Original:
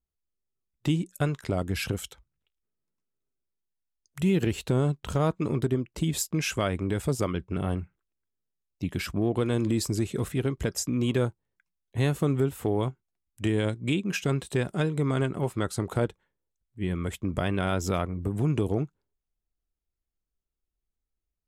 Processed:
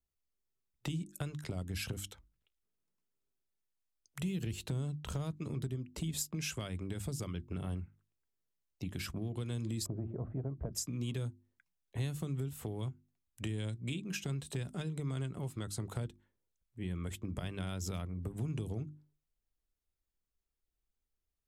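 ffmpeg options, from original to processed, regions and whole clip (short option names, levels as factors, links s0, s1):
-filter_complex "[0:a]asettb=1/sr,asplit=3[s0][s1][s2];[s0]atrim=end=9.864[s3];[s1]atrim=start=9.86:end=10.73,asetpts=PTS-STARTPTS,afade=t=in:d=0.004:c=qsin,afade=t=out:st=0.866:d=0.004:c=qsin,lowpass=f=1200:w=0.5412,lowpass=f=1200:w=1.3066,equalizer=f=650:w=2.4:g=14,bandreject=f=114.5:t=h:w=4,bandreject=f=229:t=h:w=4,bandreject=f=343.5:t=h:w=4[s4];[s2]atrim=start=10.726[s5];[s3][s4]acrossfade=d=0.004:c1=hsin:c2=qsin[s6];[s6][s5]acrossfade=d=0.004:c1=qsin:c2=hsin,acrossover=split=190|3000[s7][s8][s9];[s8]acompressor=threshold=0.0141:ratio=6[s10];[s7][s10][s9]amix=inputs=3:normalize=0,bandreject=f=50:t=h:w=6,bandreject=f=100:t=h:w=6,bandreject=f=150:t=h:w=6,bandreject=f=200:t=h:w=6,bandreject=f=250:t=h:w=6,bandreject=f=300:t=h:w=6,bandreject=f=350:t=h:w=6,acompressor=threshold=0.00794:ratio=1.5,volume=0.841"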